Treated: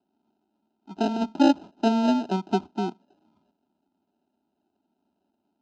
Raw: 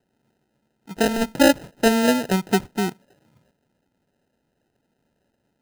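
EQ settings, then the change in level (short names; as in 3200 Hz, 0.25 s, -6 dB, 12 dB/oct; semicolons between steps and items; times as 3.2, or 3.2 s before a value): BPF 130–7300 Hz; air absorption 180 m; fixed phaser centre 500 Hz, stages 6; 0.0 dB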